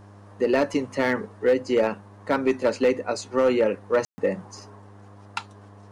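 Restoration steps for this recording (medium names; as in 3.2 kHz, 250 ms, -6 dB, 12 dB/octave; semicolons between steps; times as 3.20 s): clip repair -13.5 dBFS; de-hum 100.9 Hz, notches 7; room tone fill 4.05–4.18 s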